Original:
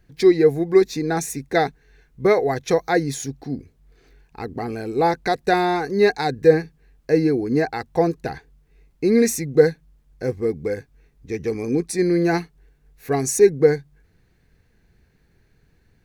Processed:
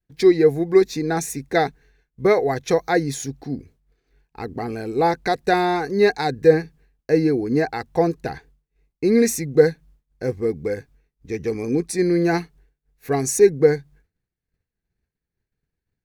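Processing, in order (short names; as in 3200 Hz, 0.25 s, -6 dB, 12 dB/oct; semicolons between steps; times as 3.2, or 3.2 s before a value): expander -44 dBFS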